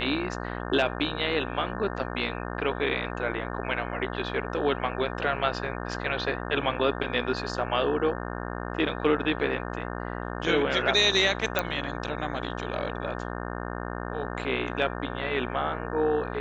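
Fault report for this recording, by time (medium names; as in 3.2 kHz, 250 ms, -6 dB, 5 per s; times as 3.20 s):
buzz 60 Hz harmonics 30 -34 dBFS
11.59 s: pop -9 dBFS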